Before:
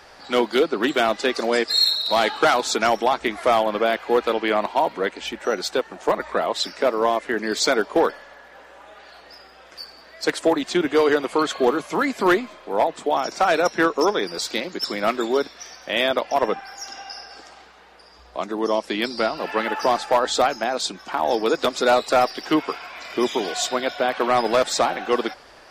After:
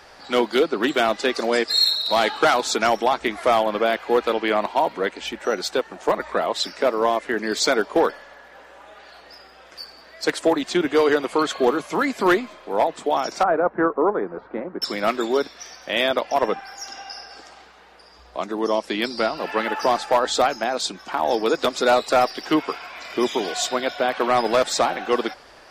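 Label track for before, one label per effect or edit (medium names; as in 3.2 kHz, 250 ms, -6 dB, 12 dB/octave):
13.430000	14.820000	low-pass 1.4 kHz 24 dB/octave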